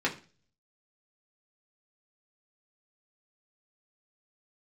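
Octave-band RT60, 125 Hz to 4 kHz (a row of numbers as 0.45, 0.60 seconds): 0.70, 0.45, 0.40, 0.35, 0.35, 0.40 seconds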